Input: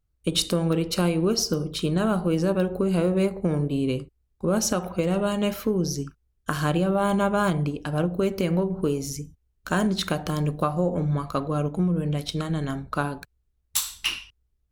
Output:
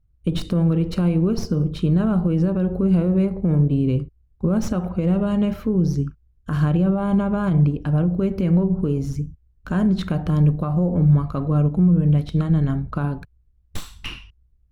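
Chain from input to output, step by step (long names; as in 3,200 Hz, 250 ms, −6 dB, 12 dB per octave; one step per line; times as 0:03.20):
stylus tracing distortion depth 0.059 ms
high-shelf EQ 3,100 Hz −9 dB
brickwall limiter −18 dBFS, peak gain reduction 7.5 dB
bass and treble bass +12 dB, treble −5 dB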